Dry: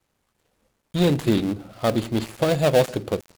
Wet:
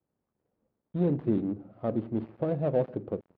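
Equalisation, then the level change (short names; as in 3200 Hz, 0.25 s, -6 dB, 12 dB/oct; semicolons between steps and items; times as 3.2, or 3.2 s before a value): band-pass 260 Hz, Q 0.57; air absorption 320 m; -5.5 dB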